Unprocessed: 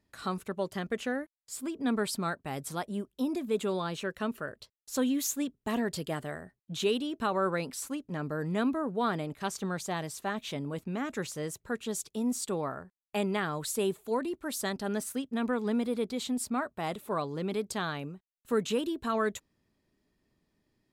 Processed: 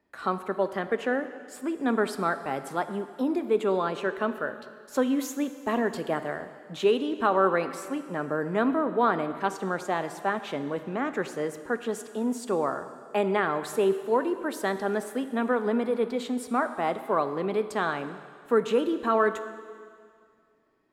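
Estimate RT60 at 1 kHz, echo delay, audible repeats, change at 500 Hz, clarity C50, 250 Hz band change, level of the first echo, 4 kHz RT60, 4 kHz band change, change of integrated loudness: 2.1 s, no echo, no echo, +7.0 dB, 11.0 dB, +3.0 dB, no echo, 2.1 s, -2.0 dB, +5.0 dB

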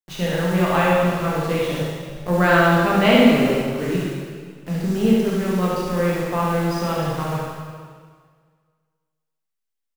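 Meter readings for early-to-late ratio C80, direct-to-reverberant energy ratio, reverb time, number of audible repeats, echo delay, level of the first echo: 0.0 dB, -6.5 dB, 1.8 s, 1, 71 ms, -3.5 dB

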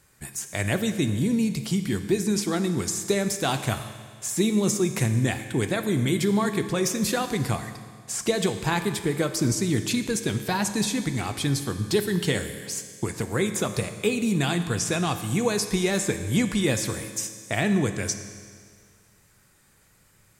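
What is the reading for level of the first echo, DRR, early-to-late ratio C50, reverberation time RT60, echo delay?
no echo, 8.0 dB, 9.5 dB, 1.9 s, no echo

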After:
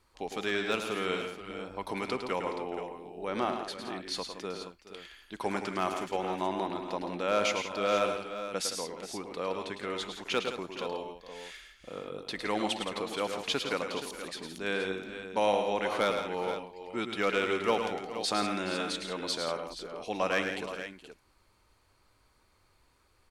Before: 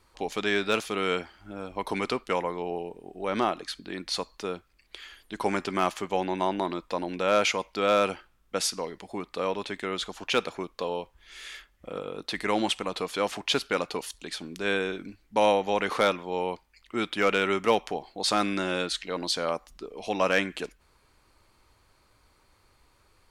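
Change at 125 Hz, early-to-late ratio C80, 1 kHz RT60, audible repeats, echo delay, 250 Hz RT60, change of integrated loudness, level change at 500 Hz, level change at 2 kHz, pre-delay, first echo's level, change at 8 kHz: -4.5 dB, no reverb, no reverb, 4, 106 ms, no reverb, -4.5 dB, -4.0 dB, -4.0 dB, no reverb, -7.5 dB, -4.0 dB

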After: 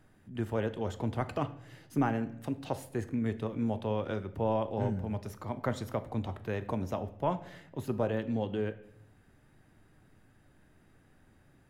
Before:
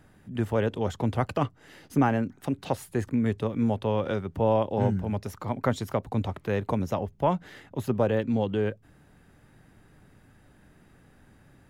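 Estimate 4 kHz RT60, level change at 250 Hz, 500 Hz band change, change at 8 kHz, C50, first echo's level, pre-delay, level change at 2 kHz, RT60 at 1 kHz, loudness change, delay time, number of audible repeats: 0.55 s, -6.0 dB, -6.5 dB, -6.0 dB, 15.0 dB, no echo, 3 ms, -6.0 dB, 0.60 s, -6.0 dB, no echo, no echo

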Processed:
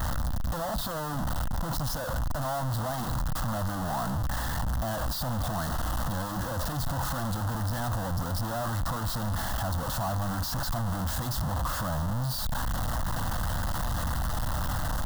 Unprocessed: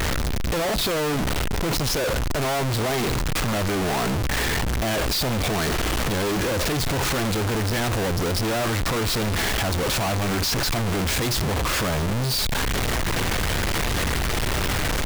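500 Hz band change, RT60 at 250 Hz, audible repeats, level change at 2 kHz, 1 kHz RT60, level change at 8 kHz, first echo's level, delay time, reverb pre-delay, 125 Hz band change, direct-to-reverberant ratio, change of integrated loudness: -11.0 dB, no reverb, no echo, -12.0 dB, no reverb, -10.5 dB, no echo, no echo, no reverb, -4.5 dB, no reverb, -7.5 dB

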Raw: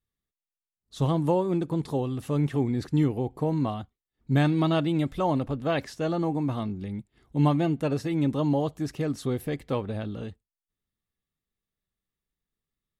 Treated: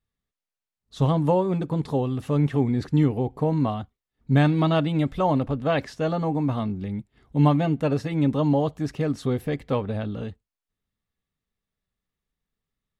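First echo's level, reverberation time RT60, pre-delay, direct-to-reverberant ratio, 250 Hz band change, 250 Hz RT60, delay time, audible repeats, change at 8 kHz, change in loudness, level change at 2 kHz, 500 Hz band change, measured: no echo, no reverb, no reverb, no reverb, +2.5 dB, no reverb, no echo, no echo, no reading, +3.0 dB, +3.0 dB, +3.0 dB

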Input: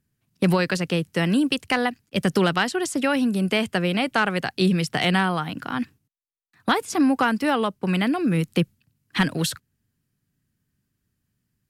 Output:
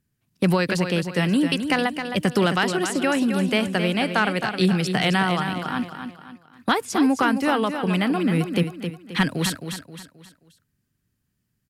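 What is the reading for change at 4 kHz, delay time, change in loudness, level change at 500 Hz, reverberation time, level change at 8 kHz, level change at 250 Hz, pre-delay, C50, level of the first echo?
+0.5 dB, 265 ms, +0.5 dB, +1.0 dB, no reverb, +1.0 dB, +0.5 dB, no reverb, no reverb, -8.0 dB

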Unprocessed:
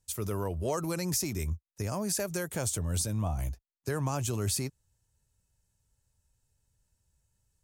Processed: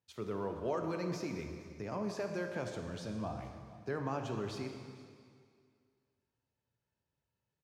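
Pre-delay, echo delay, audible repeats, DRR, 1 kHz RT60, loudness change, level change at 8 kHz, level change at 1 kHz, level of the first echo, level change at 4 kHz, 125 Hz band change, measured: 5 ms, 467 ms, 1, 4.0 dB, 2.1 s, -7.5 dB, -23.0 dB, -3.0 dB, -20.5 dB, -11.5 dB, -11.0 dB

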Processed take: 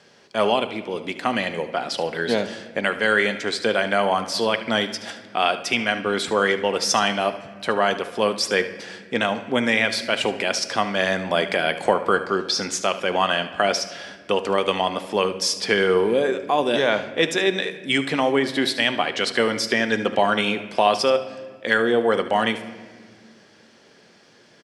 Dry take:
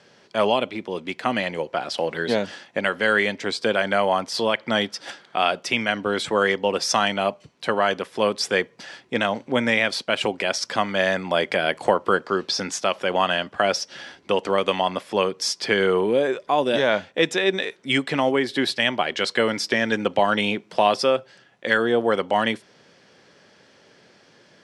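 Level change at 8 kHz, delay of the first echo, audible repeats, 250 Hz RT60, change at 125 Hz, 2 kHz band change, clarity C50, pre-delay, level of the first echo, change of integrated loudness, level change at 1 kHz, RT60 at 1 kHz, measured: +2.5 dB, 74 ms, 1, 2.9 s, 0.0 dB, +1.0 dB, 11.0 dB, 3 ms, -14.5 dB, +0.5 dB, +0.5 dB, 1.5 s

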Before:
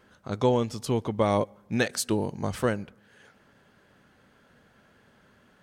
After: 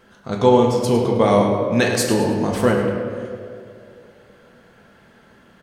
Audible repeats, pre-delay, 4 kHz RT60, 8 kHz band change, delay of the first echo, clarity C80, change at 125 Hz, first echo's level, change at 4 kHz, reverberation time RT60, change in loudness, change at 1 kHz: 1, 4 ms, 1.2 s, +7.0 dB, 104 ms, 3.5 dB, +8.0 dB, -10.0 dB, +8.0 dB, 2.5 s, +9.5 dB, +10.5 dB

